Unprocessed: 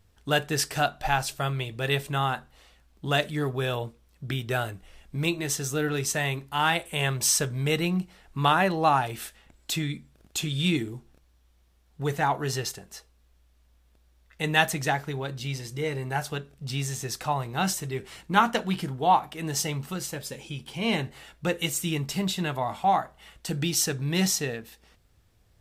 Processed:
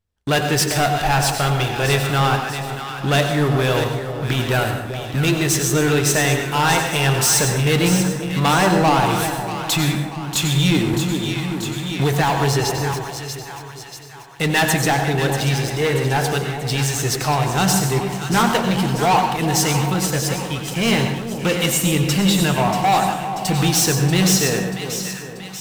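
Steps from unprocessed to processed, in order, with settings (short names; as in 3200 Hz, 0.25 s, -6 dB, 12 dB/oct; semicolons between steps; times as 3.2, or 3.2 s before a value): sample leveller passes 5; split-band echo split 900 Hz, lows 0.398 s, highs 0.636 s, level -9 dB; plate-style reverb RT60 0.67 s, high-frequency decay 0.75×, pre-delay 80 ms, DRR 5.5 dB; 10.93–12.94 three-band squash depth 70%; gain -7 dB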